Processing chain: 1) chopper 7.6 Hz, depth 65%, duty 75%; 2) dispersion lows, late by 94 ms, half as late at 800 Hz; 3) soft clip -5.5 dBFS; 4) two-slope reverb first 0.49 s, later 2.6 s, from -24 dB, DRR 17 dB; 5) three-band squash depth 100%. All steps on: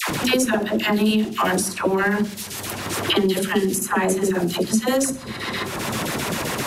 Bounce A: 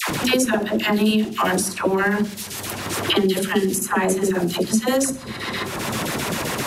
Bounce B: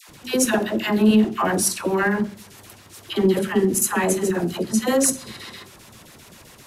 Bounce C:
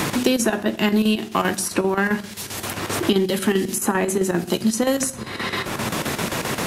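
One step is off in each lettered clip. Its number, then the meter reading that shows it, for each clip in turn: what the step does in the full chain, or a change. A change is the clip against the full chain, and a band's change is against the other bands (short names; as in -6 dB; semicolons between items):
3, distortion -26 dB; 5, momentary loudness spread change +5 LU; 2, crest factor change +2.0 dB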